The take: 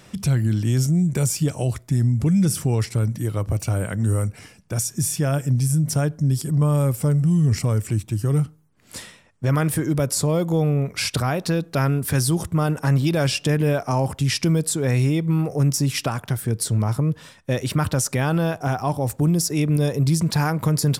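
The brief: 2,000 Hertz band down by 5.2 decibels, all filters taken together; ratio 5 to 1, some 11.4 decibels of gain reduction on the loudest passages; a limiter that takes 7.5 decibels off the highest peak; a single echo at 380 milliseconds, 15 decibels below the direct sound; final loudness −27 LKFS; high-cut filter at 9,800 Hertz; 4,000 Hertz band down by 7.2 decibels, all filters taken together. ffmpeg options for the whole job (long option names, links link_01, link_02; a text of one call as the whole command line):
ffmpeg -i in.wav -af "lowpass=9800,equalizer=frequency=2000:width_type=o:gain=-5,equalizer=frequency=4000:width_type=o:gain=-9,acompressor=threshold=-29dB:ratio=5,alimiter=level_in=1.5dB:limit=-24dB:level=0:latency=1,volume=-1.5dB,aecho=1:1:380:0.178,volume=7dB" out.wav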